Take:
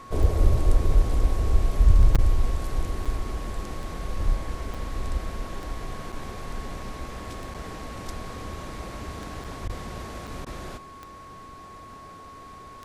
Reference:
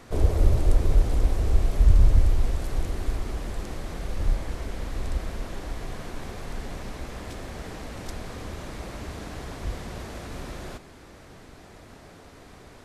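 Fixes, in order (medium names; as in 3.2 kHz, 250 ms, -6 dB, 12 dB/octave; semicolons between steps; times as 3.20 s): de-click; band-stop 1.1 kHz, Q 30; interpolate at 2.15/3.05/4.74/6.12/7.54/9.44/10.27 s, 5.8 ms; interpolate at 2.17/9.68/10.45 s, 13 ms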